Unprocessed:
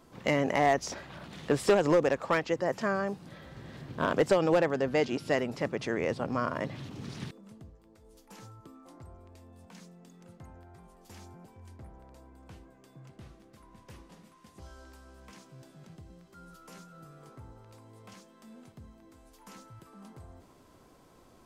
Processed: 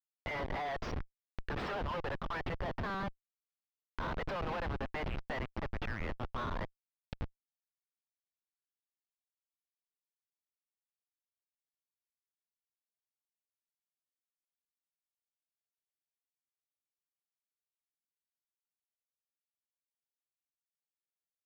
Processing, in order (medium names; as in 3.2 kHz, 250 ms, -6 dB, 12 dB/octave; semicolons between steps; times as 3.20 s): inverse Chebyshev high-pass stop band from 190 Hz, stop band 70 dB; spectral gate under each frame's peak -15 dB strong; Schmitt trigger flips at -39.5 dBFS; distance through air 310 m; tape noise reduction on one side only encoder only; trim +8 dB